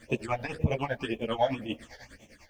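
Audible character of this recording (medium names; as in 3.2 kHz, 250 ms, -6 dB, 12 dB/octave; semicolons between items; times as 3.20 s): phasing stages 8, 1.9 Hz, lowest notch 330–1500 Hz; a quantiser's noise floor 12-bit, dither none; tremolo triangle 10 Hz, depth 90%; a shimmering, thickened sound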